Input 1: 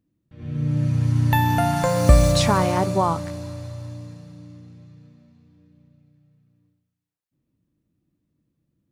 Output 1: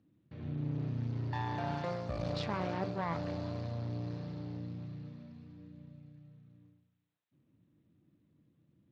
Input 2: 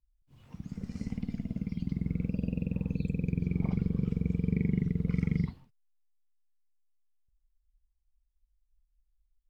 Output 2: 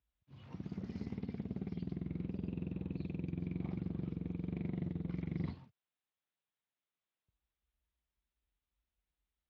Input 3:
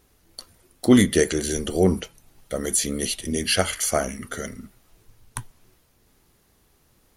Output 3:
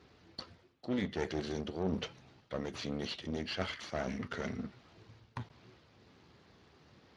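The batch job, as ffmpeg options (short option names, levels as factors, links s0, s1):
-af "areverse,acompressor=threshold=0.0158:ratio=4,areverse,aeval=exprs='clip(val(0),-1,0.00531)':c=same,lowpass=f=5400:w=0.5412,lowpass=f=5400:w=1.3066,volume=1.41" -ar 32000 -c:a libspeex -b:a 28k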